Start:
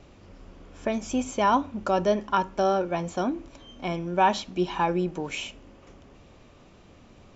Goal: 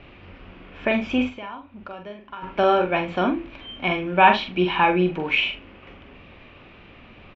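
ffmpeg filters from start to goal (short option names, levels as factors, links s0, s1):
-filter_complex "[0:a]firequalizer=gain_entry='entry(600,0);entry(2500,11);entry(6800,-26)':delay=0.05:min_phase=1,asplit=3[s0][s1][s2];[s0]afade=t=out:st=1.28:d=0.02[s3];[s1]acompressor=threshold=0.00708:ratio=4,afade=t=in:st=1.28:d=0.02,afade=t=out:st=2.42:d=0.02[s4];[s2]afade=t=in:st=2.42:d=0.02[s5];[s3][s4][s5]amix=inputs=3:normalize=0,aecho=1:1:44|80:0.501|0.133,volume=1.5"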